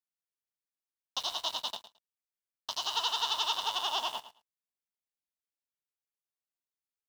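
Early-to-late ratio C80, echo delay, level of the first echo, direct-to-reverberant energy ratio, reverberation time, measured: none, 0.109 s, -13.5 dB, none, none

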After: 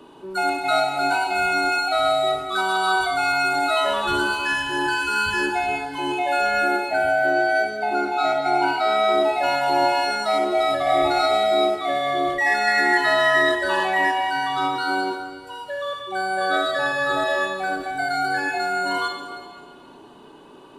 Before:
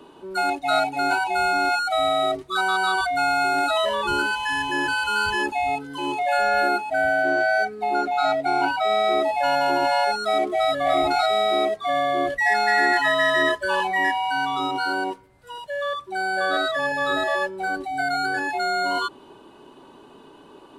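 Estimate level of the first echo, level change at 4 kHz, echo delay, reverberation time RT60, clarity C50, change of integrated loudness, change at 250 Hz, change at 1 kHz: none, +1.0 dB, none, 1.8 s, 4.5 dB, +1.0 dB, +1.5 dB, +0.5 dB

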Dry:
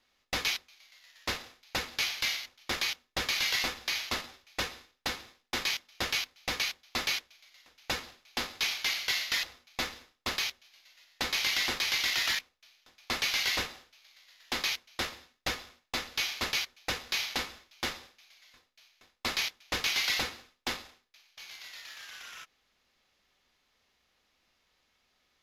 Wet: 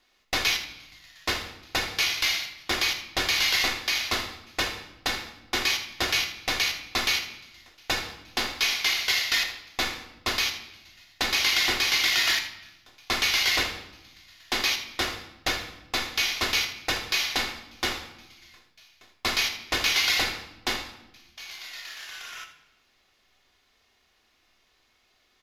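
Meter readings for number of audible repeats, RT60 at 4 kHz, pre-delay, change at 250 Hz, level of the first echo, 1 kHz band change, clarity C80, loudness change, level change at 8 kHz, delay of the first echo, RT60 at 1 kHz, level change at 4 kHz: 1, 0.80 s, 3 ms, +6.0 dB, -12.0 dB, +6.5 dB, 12.0 dB, +6.5 dB, +6.0 dB, 79 ms, 0.90 s, +6.5 dB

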